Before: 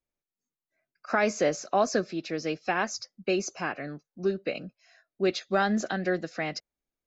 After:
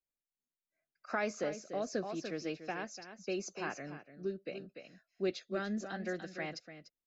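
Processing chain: echo 0.293 s -9.5 dB; rotary speaker horn 0.75 Hz; gain -8 dB

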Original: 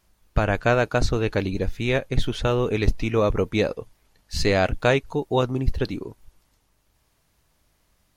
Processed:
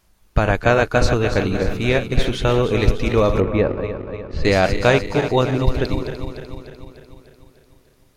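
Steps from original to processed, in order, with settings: regenerating reverse delay 0.149 s, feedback 75%, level -9 dB; 3.4–4.45 LPF 1800 Hz 12 dB/oct; gain +4 dB

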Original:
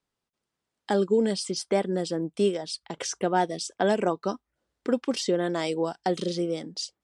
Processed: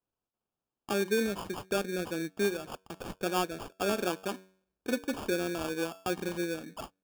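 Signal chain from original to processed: de-hum 94.44 Hz, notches 11; dynamic EQ 330 Hz, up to +3 dB, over -38 dBFS, Q 1.4; sample-rate reducer 2000 Hz, jitter 0%; gain -7.5 dB

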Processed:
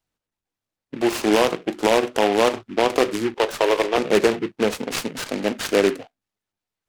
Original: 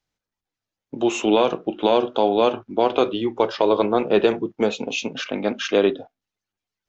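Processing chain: 3.34–3.98 HPF 350 Hz 24 dB/oct; noise-modulated delay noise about 1800 Hz, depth 0.09 ms

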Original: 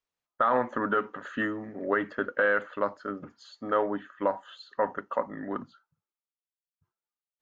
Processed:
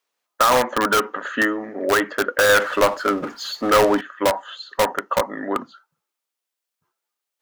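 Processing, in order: HPF 330 Hz 12 dB/oct; in parallel at -3.5 dB: wrapped overs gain 22 dB; 2.49–4.01 on the sum: power-law curve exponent 0.7; gain +7.5 dB

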